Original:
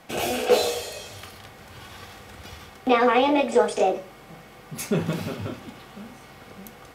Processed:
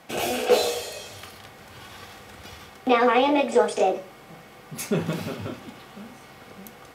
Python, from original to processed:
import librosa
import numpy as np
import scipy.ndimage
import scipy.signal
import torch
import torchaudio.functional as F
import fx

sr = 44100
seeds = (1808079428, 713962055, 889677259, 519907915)

y = fx.low_shelf(x, sr, hz=70.0, db=-9.0)